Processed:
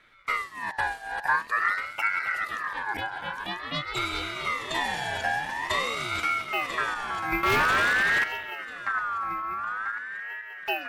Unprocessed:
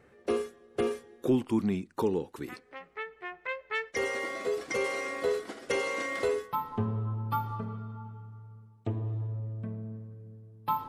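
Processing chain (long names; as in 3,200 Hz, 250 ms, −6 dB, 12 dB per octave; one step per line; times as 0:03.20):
feedback delay that plays each chunk backwards 496 ms, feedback 69%, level −5 dB
0:07.43–0:08.24: leveller curve on the samples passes 5
on a send: echo through a band-pass that steps 134 ms, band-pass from 3,300 Hz, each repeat −1.4 octaves, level −9 dB
on the sum: ring modulator whose carrier an LFO sweeps 1,500 Hz, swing 20%, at 0.48 Hz
level +3.5 dB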